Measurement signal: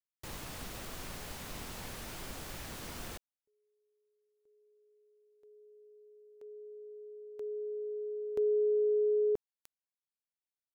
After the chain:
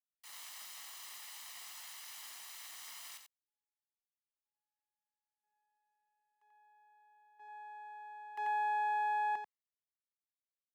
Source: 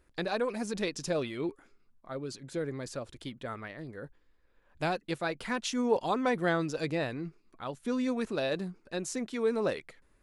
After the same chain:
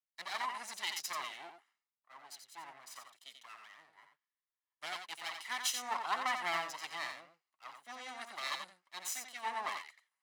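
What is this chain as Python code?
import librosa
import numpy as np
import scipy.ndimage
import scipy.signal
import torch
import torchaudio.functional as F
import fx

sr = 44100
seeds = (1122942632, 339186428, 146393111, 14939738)

y = fx.lower_of_two(x, sr, delay_ms=1.0)
y = scipy.signal.sosfilt(scipy.signal.butter(2, 1100.0, 'highpass', fs=sr, output='sos'), y)
y = y + 10.0 ** (-5.5 / 20.0) * np.pad(y, (int(89 * sr / 1000.0), 0))[:len(y)]
y = fx.band_widen(y, sr, depth_pct=70)
y = F.gain(torch.from_numpy(y), -1.5).numpy()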